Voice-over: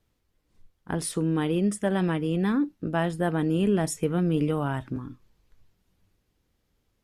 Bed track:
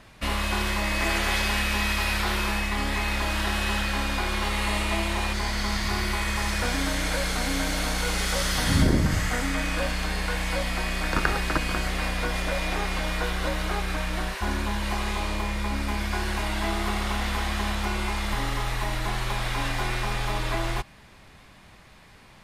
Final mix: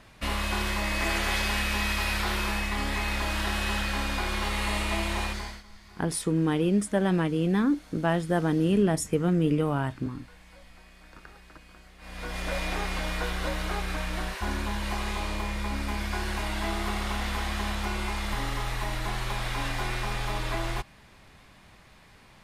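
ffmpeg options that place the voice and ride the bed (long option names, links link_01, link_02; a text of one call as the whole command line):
ffmpeg -i stem1.wav -i stem2.wav -filter_complex "[0:a]adelay=5100,volume=0.5dB[link_01];[1:a]volume=19.5dB,afade=type=out:start_time=5.21:duration=0.42:silence=0.0749894,afade=type=in:start_time=11.99:duration=0.56:silence=0.0794328[link_02];[link_01][link_02]amix=inputs=2:normalize=0" out.wav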